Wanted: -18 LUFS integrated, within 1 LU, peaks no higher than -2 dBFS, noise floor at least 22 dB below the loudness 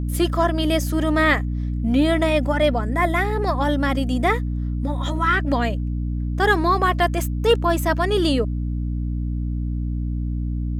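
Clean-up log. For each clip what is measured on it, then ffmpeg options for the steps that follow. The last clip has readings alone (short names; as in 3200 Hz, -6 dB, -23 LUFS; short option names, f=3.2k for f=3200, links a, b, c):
hum 60 Hz; harmonics up to 300 Hz; hum level -22 dBFS; loudness -21.5 LUFS; peak -5.0 dBFS; loudness target -18.0 LUFS
-> -af "bandreject=f=60:t=h:w=6,bandreject=f=120:t=h:w=6,bandreject=f=180:t=h:w=6,bandreject=f=240:t=h:w=6,bandreject=f=300:t=h:w=6"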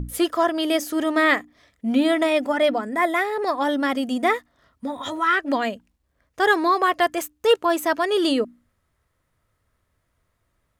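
hum none; loudness -21.5 LUFS; peak -6.5 dBFS; loudness target -18.0 LUFS
-> -af "volume=3.5dB"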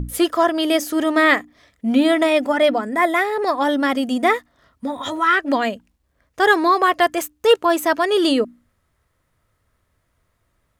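loudness -18.0 LUFS; peak -3.0 dBFS; noise floor -69 dBFS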